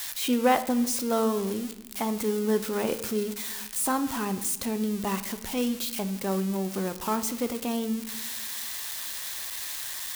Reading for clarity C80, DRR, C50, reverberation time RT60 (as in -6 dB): 15.5 dB, 10.0 dB, 13.0 dB, 1.0 s